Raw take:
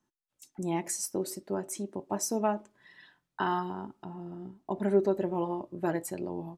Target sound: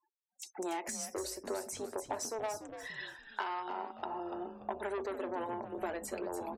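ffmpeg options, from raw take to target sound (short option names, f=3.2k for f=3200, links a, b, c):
-filter_complex "[0:a]asoftclip=type=tanh:threshold=-27dB,highpass=f=430:w=0.5412,highpass=f=430:w=1.3066,acompressor=threshold=-46dB:ratio=10,afftfilt=real='re*gte(hypot(re,im),0.000282)':imag='im*gte(hypot(re,im),0.000282)':win_size=1024:overlap=0.75,asplit=5[a][b][c][d][e];[b]adelay=290,afreqshift=-140,volume=-10.5dB[f];[c]adelay=580,afreqshift=-280,volume=-19.9dB[g];[d]adelay=870,afreqshift=-420,volume=-29.2dB[h];[e]adelay=1160,afreqshift=-560,volume=-38.6dB[i];[a][f][g][h][i]amix=inputs=5:normalize=0,acrossover=split=6700[j][k];[k]acompressor=threshold=-57dB:ratio=4:attack=1:release=60[l];[j][l]amix=inputs=2:normalize=0,volume=11.5dB"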